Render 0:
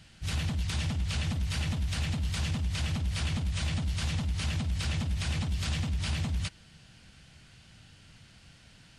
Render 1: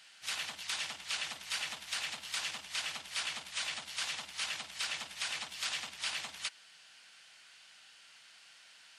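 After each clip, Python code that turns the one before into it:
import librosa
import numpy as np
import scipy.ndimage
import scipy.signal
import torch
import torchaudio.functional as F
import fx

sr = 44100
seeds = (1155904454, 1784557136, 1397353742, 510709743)

y = scipy.signal.sosfilt(scipy.signal.butter(2, 950.0, 'highpass', fs=sr, output='sos'), x)
y = y * 10.0 ** (1.5 / 20.0)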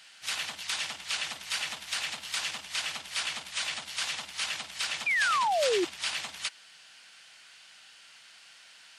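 y = fx.spec_paint(x, sr, seeds[0], shape='fall', start_s=5.06, length_s=0.79, low_hz=330.0, high_hz=2500.0, level_db=-31.0)
y = y * 10.0 ** (4.5 / 20.0)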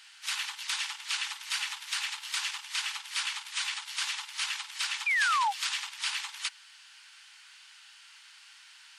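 y = fx.brickwall_highpass(x, sr, low_hz=790.0)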